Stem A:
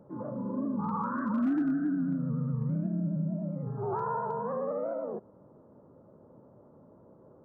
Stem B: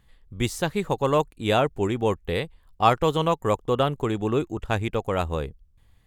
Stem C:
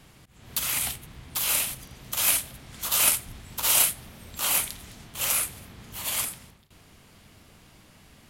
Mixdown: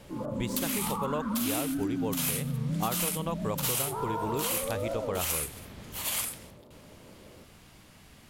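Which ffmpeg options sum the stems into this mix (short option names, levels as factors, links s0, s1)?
-filter_complex "[0:a]volume=1.33[s0];[1:a]volume=0.531[s1];[2:a]volume=0.944[s2];[s0][s1][s2]amix=inputs=3:normalize=0,acompressor=threshold=0.0447:ratio=6"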